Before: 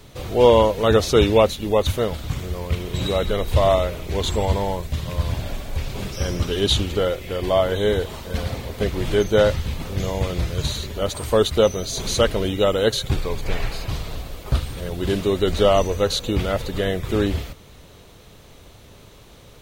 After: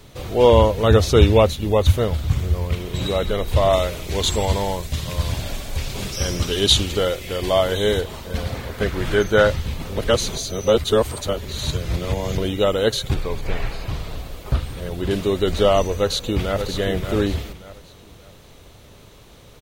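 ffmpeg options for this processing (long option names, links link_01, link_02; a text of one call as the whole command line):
ffmpeg -i in.wav -filter_complex "[0:a]asettb=1/sr,asplit=3[link_01][link_02][link_03];[link_01]atrim=end=0.514[link_04];[link_02]atrim=start=0.51:end=2.7,asetpts=PTS-STARTPTS,afade=type=in:duration=0.004:curve=qsin,afade=type=out:start_time=2.186:duration=0.004:curve=qsin,equalizer=frequency=80:width=1:gain=9.5[link_05];[link_03]atrim=start=2.696[link_06];[link_04][link_05]acrossfade=duration=0.004:curve1=hsin:curve2=qsin[link_07];[link_07][link_06]acrossfade=duration=0.004:curve1=qsin:curve2=hsin,asettb=1/sr,asplit=3[link_08][link_09][link_10];[link_08]atrim=end=3.734[link_11];[link_09]atrim=start=3.73:end=8.01,asetpts=PTS-STARTPTS,afade=type=in:duration=0.004:curve=qsin,afade=type=out:start_time=4.276:duration=0.004:curve=qsin,equalizer=frequency=7800:width=0.34:gain=7.5[link_12];[link_10]atrim=start=8.006[link_13];[link_11][link_12]acrossfade=duration=0.004:curve1=hsin:curve2=qsin[link_14];[link_14][link_13]acrossfade=duration=0.004:curve1=qsin:curve2=hsin,asettb=1/sr,asplit=3[link_15][link_16][link_17];[link_15]atrim=end=8.554[link_18];[link_16]atrim=start=8.55:end=9.47,asetpts=PTS-STARTPTS,afade=type=in:duration=0.004:curve=qsin,afade=type=out:start_time=0.916:duration=0.004:curve=qsin,equalizer=frequency=1500:width=1.9:gain=8.5[link_19];[link_17]atrim=start=9.466[link_20];[link_18][link_19]acrossfade=duration=0.004:curve1=hsin:curve2=qsin[link_21];[link_21][link_20]acrossfade=duration=0.004:curve1=qsin:curve2=hsin,asettb=1/sr,asplit=3[link_22][link_23][link_24];[link_22]atrim=end=13.144[link_25];[link_23]atrim=start=13.14:end=15.11,asetpts=PTS-STARTPTS,afade=type=in:duration=0.004:curve=qsin,afade=type=out:start_time=1.966:duration=0.004:curve=qsin,acrossover=split=3000[link_26][link_27];[link_27]acompressor=threshold=-42dB:ratio=4:attack=1:release=60[link_28];[link_26][link_28]amix=inputs=2:normalize=0[link_29];[link_24]atrim=start=15.106[link_30];[link_25][link_29]acrossfade=duration=0.004:curve1=hsin:curve2=qsin[link_31];[link_31][link_30]acrossfade=duration=0.004:curve1=qsin:curve2=hsin,asplit=2[link_32][link_33];[link_33]afade=type=in:start_time=15.97:duration=0.01,afade=type=out:start_time=16.62:duration=0.01,aecho=0:1:580|1160|1740|2320:0.398107|0.119432|0.0358296|0.0107489[link_34];[link_32][link_34]amix=inputs=2:normalize=0,asplit=3[link_35][link_36][link_37];[link_35]atrim=end=9.972[link_38];[link_36]atrim=start=9.968:end=12.382,asetpts=PTS-STARTPTS,areverse[link_39];[link_37]atrim=start=12.378[link_40];[link_38][link_39]acrossfade=duration=0.004:curve1=hsin:curve2=hsin[link_41];[link_41][link_40]acrossfade=duration=0.004:curve1=hsin:curve2=hsin" out.wav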